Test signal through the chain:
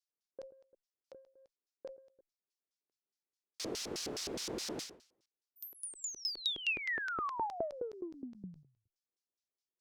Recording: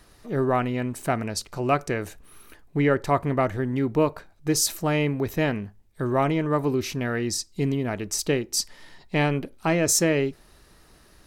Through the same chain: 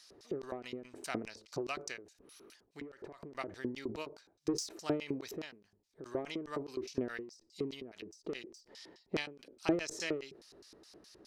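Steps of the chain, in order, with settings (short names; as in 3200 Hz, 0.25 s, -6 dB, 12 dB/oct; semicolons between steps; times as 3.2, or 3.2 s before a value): LFO band-pass square 4.8 Hz 380–5200 Hz; added harmonics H 5 -22 dB, 6 -40 dB, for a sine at -14 dBFS; ending taper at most 120 dB/s; gain +3.5 dB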